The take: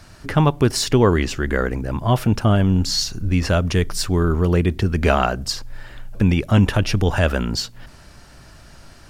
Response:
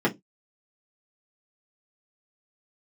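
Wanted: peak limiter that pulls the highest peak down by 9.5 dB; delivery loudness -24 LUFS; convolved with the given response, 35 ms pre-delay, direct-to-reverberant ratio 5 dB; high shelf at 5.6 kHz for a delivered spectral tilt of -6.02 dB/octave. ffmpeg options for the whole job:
-filter_complex "[0:a]highshelf=f=5600:g=-6,alimiter=limit=0.237:level=0:latency=1,asplit=2[s0][s1];[1:a]atrim=start_sample=2205,adelay=35[s2];[s1][s2]afir=irnorm=-1:irlink=0,volume=0.112[s3];[s0][s3]amix=inputs=2:normalize=0,volume=0.668"

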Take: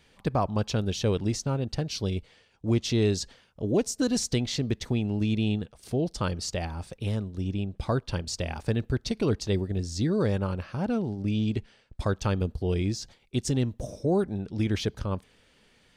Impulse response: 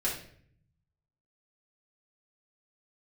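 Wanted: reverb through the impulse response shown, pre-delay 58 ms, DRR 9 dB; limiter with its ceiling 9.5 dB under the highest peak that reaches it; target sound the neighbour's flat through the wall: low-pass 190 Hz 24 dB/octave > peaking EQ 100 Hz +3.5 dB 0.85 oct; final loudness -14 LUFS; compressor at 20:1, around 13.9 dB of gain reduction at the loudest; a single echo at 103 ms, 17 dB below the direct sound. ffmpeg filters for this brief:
-filter_complex "[0:a]acompressor=threshold=0.02:ratio=20,alimiter=level_in=2.82:limit=0.0631:level=0:latency=1,volume=0.355,aecho=1:1:103:0.141,asplit=2[s0][s1];[1:a]atrim=start_sample=2205,adelay=58[s2];[s1][s2]afir=irnorm=-1:irlink=0,volume=0.168[s3];[s0][s3]amix=inputs=2:normalize=0,lowpass=f=190:w=0.5412,lowpass=f=190:w=1.3066,equalizer=f=100:t=o:w=0.85:g=3.5,volume=31.6"

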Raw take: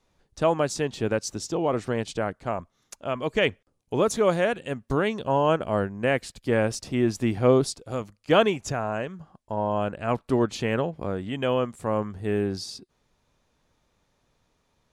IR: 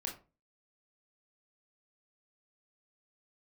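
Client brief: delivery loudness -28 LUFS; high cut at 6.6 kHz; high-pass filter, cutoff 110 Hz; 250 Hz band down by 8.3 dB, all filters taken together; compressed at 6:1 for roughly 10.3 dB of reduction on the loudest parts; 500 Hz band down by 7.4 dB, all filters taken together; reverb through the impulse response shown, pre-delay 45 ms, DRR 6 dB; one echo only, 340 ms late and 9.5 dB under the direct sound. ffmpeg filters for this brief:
-filter_complex "[0:a]highpass=110,lowpass=6600,equalizer=f=250:t=o:g=-8.5,equalizer=f=500:t=o:g=-7,acompressor=threshold=0.0355:ratio=6,aecho=1:1:340:0.335,asplit=2[s0][s1];[1:a]atrim=start_sample=2205,adelay=45[s2];[s1][s2]afir=irnorm=-1:irlink=0,volume=0.501[s3];[s0][s3]amix=inputs=2:normalize=0,volume=2.11"

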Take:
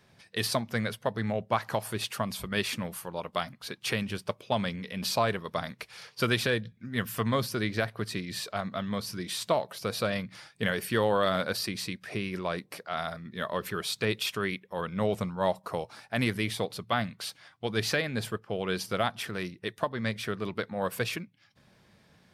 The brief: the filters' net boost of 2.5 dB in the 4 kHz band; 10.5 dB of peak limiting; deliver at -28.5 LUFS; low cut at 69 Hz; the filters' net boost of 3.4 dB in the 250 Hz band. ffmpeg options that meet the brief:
-af "highpass=69,equalizer=f=250:t=o:g=4.5,equalizer=f=4000:t=o:g=3,volume=1.78,alimiter=limit=0.158:level=0:latency=1"

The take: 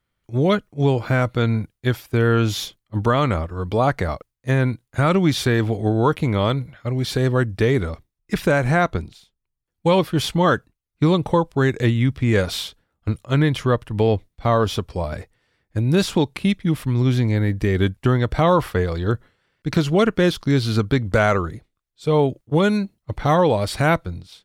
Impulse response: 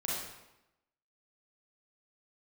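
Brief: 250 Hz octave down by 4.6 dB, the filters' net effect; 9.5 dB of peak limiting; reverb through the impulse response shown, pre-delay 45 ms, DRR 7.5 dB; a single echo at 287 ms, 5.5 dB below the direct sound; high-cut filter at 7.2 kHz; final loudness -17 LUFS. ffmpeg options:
-filter_complex "[0:a]lowpass=7200,equalizer=f=250:t=o:g=-7,alimiter=limit=0.158:level=0:latency=1,aecho=1:1:287:0.531,asplit=2[s0][s1];[1:a]atrim=start_sample=2205,adelay=45[s2];[s1][s2]afir=irnorm=-1:irlink=0,volume=0.251[s3];[s0][s3]amix=inputs=2:normalize=0,volume=2.66"

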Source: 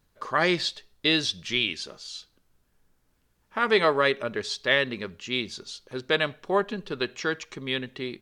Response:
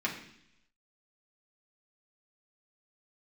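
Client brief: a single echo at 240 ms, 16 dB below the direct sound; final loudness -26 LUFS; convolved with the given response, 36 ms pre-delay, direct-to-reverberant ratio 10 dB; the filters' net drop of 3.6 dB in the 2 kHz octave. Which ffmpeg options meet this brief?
-filter_complex "[0:a]equalizer=f=2000:t=o:g=-4.5,aecho=1:1:240:0.158,asplit=2[s0][s1];[1:a]atrim=start_sample=2205,adelay=36[s2];[s1][s2]afir=irnorm=-1:irlink=0,volume=0.141[s3];[s0][s3]amix=inputs=2:normalize=0,volume=1.19"

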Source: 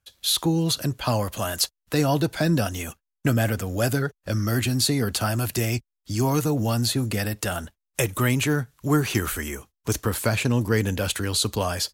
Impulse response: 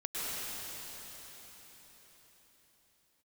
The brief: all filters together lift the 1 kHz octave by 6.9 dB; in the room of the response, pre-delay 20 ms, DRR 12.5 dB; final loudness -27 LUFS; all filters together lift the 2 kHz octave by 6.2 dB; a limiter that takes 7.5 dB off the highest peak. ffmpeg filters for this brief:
-filter_complex "[0:a]equalizer=f=1000:t=o:g=7.5,equalizer=f=2000:t=o:g=5.5,alimiter=limit=0.251:level=0:latency=1,asplit=2[s0][s1];[1:a]atrim=start_sample=2205,adelay=20[s2];[s1][s2]afir=irnorm=-1:irlink=0,volume=0.119[s3];[s0][s3]amix=inputs=2:normalize=0,volume=0.708"

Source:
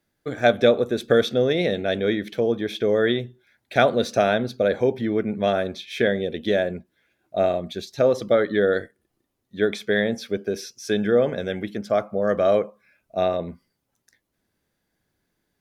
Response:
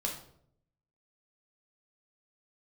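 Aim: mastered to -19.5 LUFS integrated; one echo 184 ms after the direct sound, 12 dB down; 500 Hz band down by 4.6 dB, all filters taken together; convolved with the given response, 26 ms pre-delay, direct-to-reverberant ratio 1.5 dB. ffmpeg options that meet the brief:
-filter_complex "[0:a]equalizer=f=500:t=o:g=-5.5,aecho=1:1:184:0.251,asplit=2[s0][s1];[1:a]atrim=start_sample=2205,adelay=26[s2];[s1][s2]afir=irnorm=-1:irlink=0,volume=0.596[s3];[s0][s3]amix=inputs=2:normalize=0,volume=1.41"

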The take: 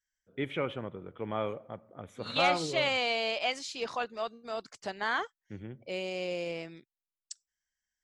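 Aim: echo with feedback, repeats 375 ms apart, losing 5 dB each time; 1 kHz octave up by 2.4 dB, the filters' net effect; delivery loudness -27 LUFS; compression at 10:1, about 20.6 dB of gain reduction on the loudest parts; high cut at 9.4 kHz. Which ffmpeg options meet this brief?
-af "lowpass=9400,equalizer=f=1000:t=o:g=3.5,acompressor=threshold=0.00891:ratio=10,aecho=1:1:375|750|1125|1500|1875|2250|2625:0.562|0.315|0.176|0.0988|0.0553|0.031|0.0173,volume=7.5"

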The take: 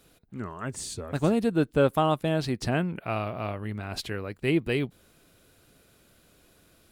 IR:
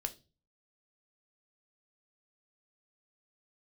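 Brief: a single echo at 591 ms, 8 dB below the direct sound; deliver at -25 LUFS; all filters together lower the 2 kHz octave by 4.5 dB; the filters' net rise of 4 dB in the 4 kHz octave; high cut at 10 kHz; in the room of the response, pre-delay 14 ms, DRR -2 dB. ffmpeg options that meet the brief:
-filter_complex "[0:a]lowpass=10000,equalizer=f=2000:t=o:g=-9,equalizer=f=4000:t=o:g=8,aecho=1:1:591:0.398,asplit=2[s0][s1];[1:a]atrim=start_sample=2205,adelay=14[s2];[s1][s2]afir=irnorm=-1:irlink=0,volume=1.26[s3];[s0][s3]amix=inputs=2:normalize=0,volume=0.891"

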